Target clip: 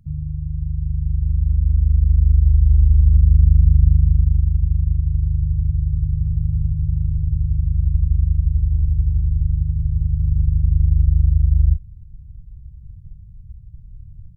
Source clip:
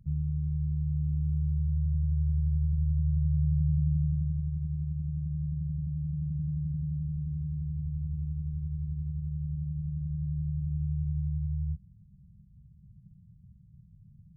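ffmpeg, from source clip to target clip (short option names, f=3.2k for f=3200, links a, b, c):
-filter_complex "[0:a]asplit=2[a][b];[b]asetrate=29433,aresample=44100,atempo=1.49831,volume=-5dB[c];[a][c]amix=inputs=2:normalize=0,asubboost=boost=11.5:cutoff=64,volume=3.5dB"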